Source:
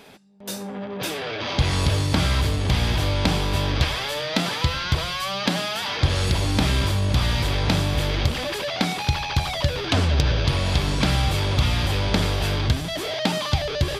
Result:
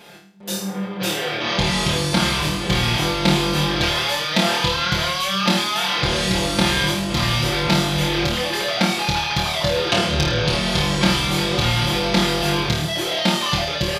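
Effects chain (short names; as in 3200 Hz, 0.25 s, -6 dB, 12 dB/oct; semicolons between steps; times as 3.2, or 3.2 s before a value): low shelf 70 Hz -9.5 dB; comb 5.7 ms, depth 99%; flutter echo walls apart 4.5 m, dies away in 0.52 s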